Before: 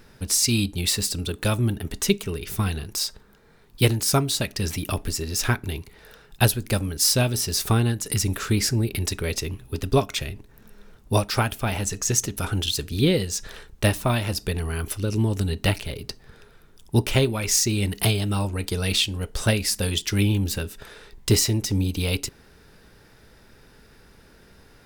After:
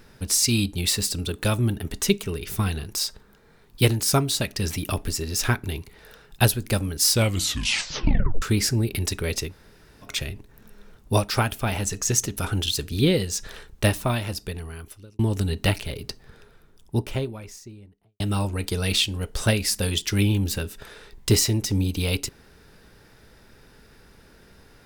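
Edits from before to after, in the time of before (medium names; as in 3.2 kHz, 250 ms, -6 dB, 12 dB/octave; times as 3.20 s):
7.09 s: tape stop 1.33 s
9.49–10.06 s: room tone, crossfade 0.10 s
13.85–15.19 s: fade out
16.06–18.20 s: studio fade out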